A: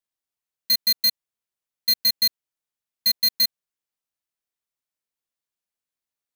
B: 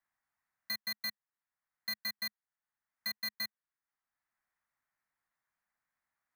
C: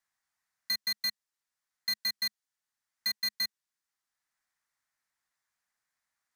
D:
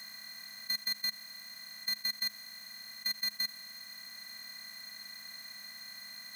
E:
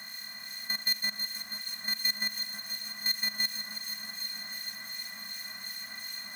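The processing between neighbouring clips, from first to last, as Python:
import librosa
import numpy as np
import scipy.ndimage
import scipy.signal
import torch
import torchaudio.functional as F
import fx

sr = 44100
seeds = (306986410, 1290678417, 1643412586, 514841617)

y1 = fx.curve_eq(x, sr, hz=(210.0, 450.0, 770.0, 1900.0, 2900.0), db=(0, -8, 5, 9, -10))
y1 = fx.band_squash(y1, sr, depth_pct=40)
y1 = y1 * librosa.db_to_amplitude(-9.0)
y2 = fx.peak_eq(y1, sr, hz=5900.0, db=10.5, octaves=2.3)
y2 = y2 * librosa.db_to_amplitude(-1.5)
y3 = fx.bin_compress(y2, sr, power=0.2)
y3 = y3 * librosa.db_to_amplitude(-4.0)
y4 = fx.echo_alternate(y3, sr, ms=162, hz=2200.0, feedback_pct=90, wet_db=-6)
y4 = fx.harmonic_tremolo(y4, sr, hz=2.7, depth_pct=50, crossover_hz=2000.0)
y4 = y4 * librosa.db_to_amplitude(7.5)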